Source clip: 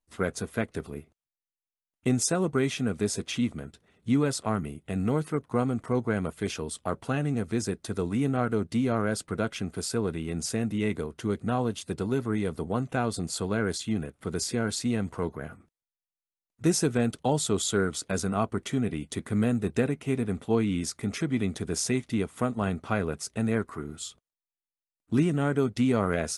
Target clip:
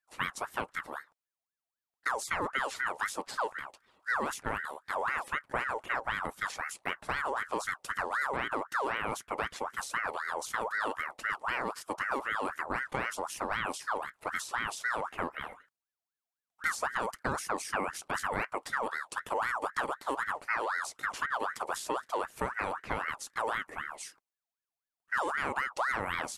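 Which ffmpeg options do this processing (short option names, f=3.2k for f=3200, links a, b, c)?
-filter_complex "[0:a]acrossover=split=2000|4700[a][b][c];[a]acompressor=threshold=-26dB:ratio=4[d];[b]acompressor=threshold=-51dB:ratio=4[e];[c]acompressor=threshold=-39dB:ratio=4[f];[d][e][f]amix=inputs=3:normalize=0,aeval=exprs='val(0)*sin(2*PI*1200*n/s+1200*0.45/3.9*sin(2*PI*3.9*n/s))':c=same"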